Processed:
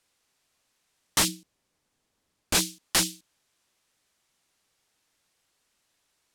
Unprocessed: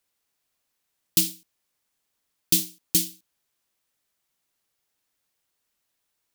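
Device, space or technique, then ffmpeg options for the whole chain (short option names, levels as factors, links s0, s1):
overflowing digital effects unit: -filter_complex "[0:a]aeval=exprs='(mod(8.41*val(0)+1,2)-1)/8.41':c=same,lowpass=9500,asettb=1/sr,asplit=3[s0][s1][s2];[s0]atrim=end=1.284[s3];[s1]atrim=start=1.28:end=2.55,asetpts=PTS-STARTPTS,afade=t=in:d=0.004:c=qsin,afade=t=out:st=1.266:d=0.004:c=qsin,tiltshelf=f=720:g=5[s4];[s2]atrim=start=2.546[s5];[s3][s4]acrossfade=d=0.004:c1=hsin:c2=qsin[s6];[s6][s5]acrossfade=d=0.004:c1=qsin:c2=hsin,volume=2.24"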